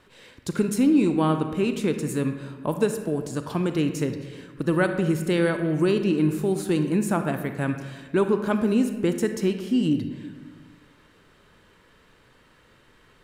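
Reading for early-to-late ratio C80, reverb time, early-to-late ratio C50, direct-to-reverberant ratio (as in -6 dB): 9.5 dB, 1.4 s, 8.0 dB, 7.0 dB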